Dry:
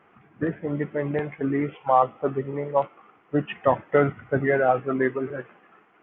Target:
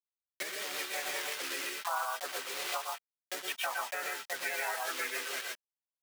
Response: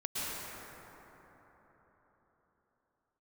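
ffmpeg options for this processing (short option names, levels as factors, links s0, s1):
-filter_complex "[0:a]asplit=3[s0][s1][s2];[s1]asetrate=55563,aresample=44100,atempo=0.793701,volume=0.891[s3];[s2]asetrate=58866,aresample=44100,atempo=0.749154,volume=0.158[s4];[s0][s3][s4]amix=inputs=3:normalize=0,acompressor=threshold=0.0178:ratio=1.5,acrusher=bits=5:mix=0:aa=0.000001[s5];[1:a]atrim=start_sample=2205,atrim=end_sample=6174[s6];[s5][s6]afir=irnorm=-1:irlink=0,alimiter=limit=0.0668:level=0:latency=1:release=439,highpass=1300,volume=2.24"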